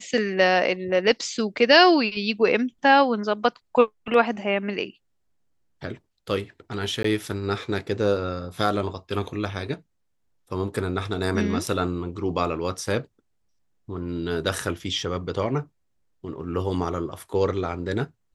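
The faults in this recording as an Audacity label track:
7.030000	7.040000	drop-out 14 ms

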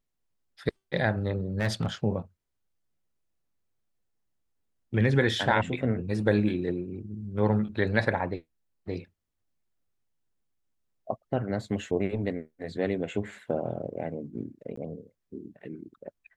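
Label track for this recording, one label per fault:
1.600000	1.860000	clipping −21.5 dBFS
14.760000	14.770000	drop-out 14 ms

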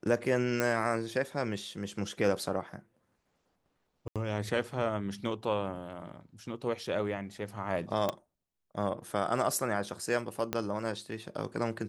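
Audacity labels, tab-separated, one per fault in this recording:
0.600000	0.600000	click −15 dBFS
4.080000	4.160000	drop-out 77 ms
8.090000	8.090000	click −16 dBFS
10.530000	10.530000	click −15 dBFS

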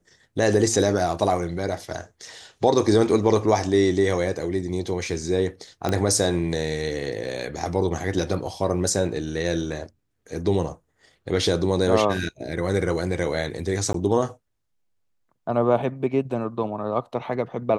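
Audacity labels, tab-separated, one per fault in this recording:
5.890000	5.890000	click −11 dBFS
13.930000	13.940000	drop-out 13 ms

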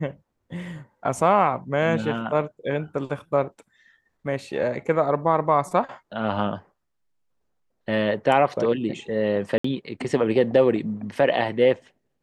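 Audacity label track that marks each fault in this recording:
9.580000	9.640000	drop-out 64 ms

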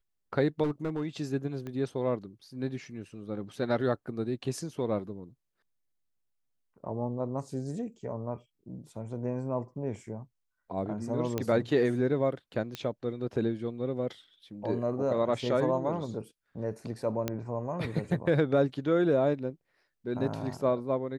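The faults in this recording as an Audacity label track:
0.630000	1.070000	clipping −26 dBFS
1.670000	1.670000	click −27 dBFS
11.380000	11.380000	click −16 dBFS
12.750000	12.750000	click −20 dBFS
17.280000	17.280000	click −15 dBFS

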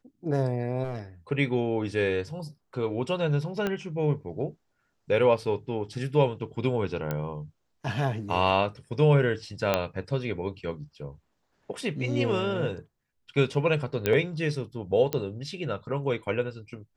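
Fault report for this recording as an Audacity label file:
0.840000	0.990000	clipping −28 dBFS
3.670000	3.670000	click −15 dBFS
7.110000	7.110000	click −16 dBFS
9.740000	9.740000	click −9 dBFS
14.060000	14.060000	click −11 dBFS
15.130000	15.130000	click −14 dBFS

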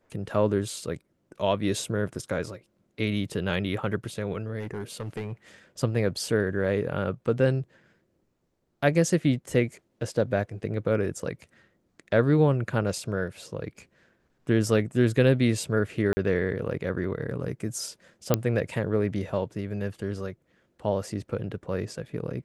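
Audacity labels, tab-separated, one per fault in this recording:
4.600000	5.330000	clipping −28 dBFS
16.130000	16.170000	drop-out 40 ms
18.340000	18.340000	click −6 dBFS

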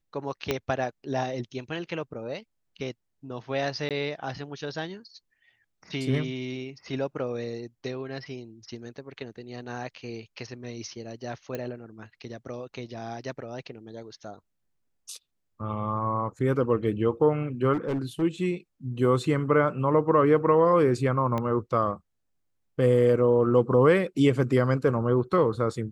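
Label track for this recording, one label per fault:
0.510000	0.510000	click −11 dBFS
3.890000	3.910000	drop-out 17 ms
11.550000	11.550000	click −19 dBFS
17.730000	18.230000	clipping −24 dBFS
21.380000	21.380000	click −17 dBFS

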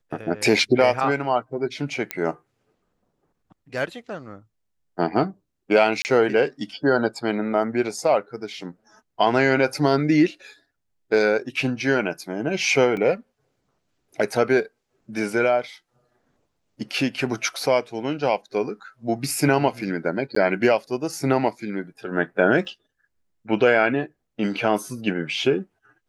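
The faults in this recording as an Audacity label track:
2.110000	2.110000	click −8 dBFS
6.020000	6.050000	drop-out 29 ms
12.970000	12.970000	drop-out 2.3 ms
20.350000	20.360000	drop-out 14 ms
22.650000	22.650000	drop-out 4.5 ms

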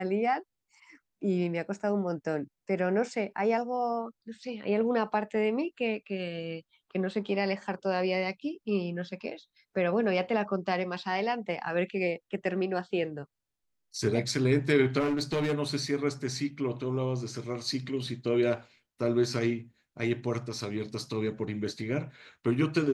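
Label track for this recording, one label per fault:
14.990000	15.540000	clipping −24.5 dBFS

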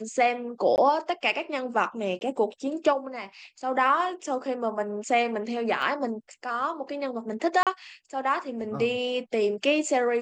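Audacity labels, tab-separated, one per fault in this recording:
0.760000	0.780000	drop-out 19 ms
2.190000	2.210000	drop-out 21 ms
5.820000	5.820000	drop-out 3.1 ms
7.630000	7.670000	drop-out 37 ms

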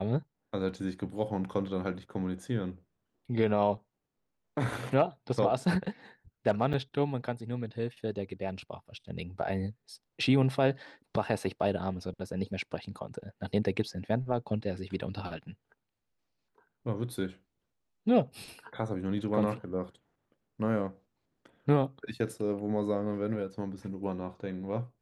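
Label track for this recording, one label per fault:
6.730000	6.740000	drop-out 6.8 ms

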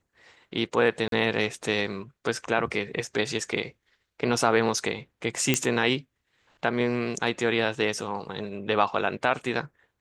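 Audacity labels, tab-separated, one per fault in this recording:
1.080000	1.120000	drop-out 42 ms
5.540000	5.540000	click −6 dBFS

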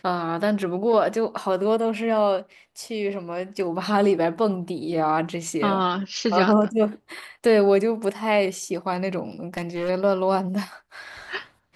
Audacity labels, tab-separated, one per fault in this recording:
9.540000	9.900000	clipping −22.5 dBFS

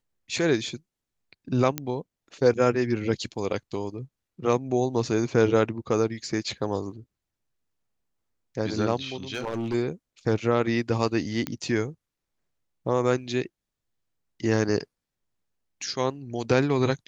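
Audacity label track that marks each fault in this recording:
1.780000	1.780000	click −11 dBFS
9.340000	9.750000	clipping −25 dBFS
11.470000	11.470000	click −13 dBFS

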